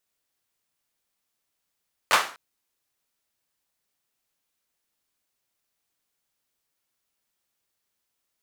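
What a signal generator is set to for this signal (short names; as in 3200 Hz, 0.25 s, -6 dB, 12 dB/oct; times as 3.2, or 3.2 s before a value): hand clap length 0.25 s, bursts 3, apart 10 ms, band 1200 Hz, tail 0.39 s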